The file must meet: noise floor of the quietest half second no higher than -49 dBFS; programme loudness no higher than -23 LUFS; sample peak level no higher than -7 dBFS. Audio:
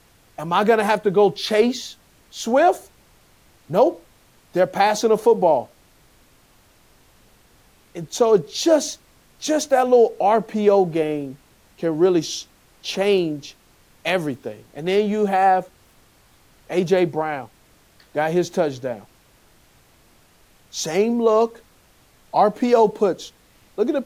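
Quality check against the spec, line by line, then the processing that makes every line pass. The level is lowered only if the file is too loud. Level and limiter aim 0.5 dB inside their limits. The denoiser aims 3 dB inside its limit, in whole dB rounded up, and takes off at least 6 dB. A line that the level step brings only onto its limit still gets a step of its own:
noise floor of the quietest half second -55 dBFS: OK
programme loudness -20.0 LUFS: fail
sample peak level -5.5 dBFS: fail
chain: gain -3.5 dB

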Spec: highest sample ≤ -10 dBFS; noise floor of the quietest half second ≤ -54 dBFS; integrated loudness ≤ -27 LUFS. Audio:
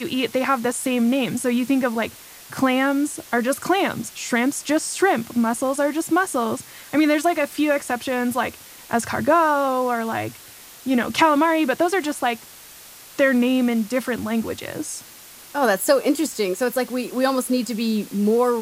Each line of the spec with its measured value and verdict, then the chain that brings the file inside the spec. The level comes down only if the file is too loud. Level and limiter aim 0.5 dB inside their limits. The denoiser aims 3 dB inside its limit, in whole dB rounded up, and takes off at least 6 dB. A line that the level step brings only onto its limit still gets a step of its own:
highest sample -3.5 dBFS: fail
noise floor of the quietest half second -43 dBFS: fail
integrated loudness -21.5 LUFS: fail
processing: denoiser 8 dB, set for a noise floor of -43 dBFS; gain -6 dB; limiter -10.5 dBFS

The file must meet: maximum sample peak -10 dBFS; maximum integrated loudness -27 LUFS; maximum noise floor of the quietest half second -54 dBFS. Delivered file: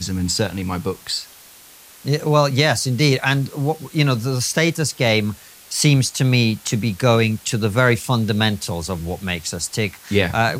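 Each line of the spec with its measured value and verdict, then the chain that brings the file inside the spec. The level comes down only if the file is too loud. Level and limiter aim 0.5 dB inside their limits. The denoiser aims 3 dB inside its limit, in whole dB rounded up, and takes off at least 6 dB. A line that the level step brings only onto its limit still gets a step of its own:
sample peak -3.0 dBFS: fail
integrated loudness -19.5 LUFS: fail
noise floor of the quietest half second -45 dBFS: fail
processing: denoiser 6 dB, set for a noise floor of -45 dBFS; gain -8 dB

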